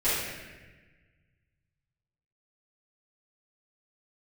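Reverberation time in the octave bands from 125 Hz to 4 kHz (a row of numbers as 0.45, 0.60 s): 2.5, 1.7, 1.4, 1.2, 1.5, 1.0 s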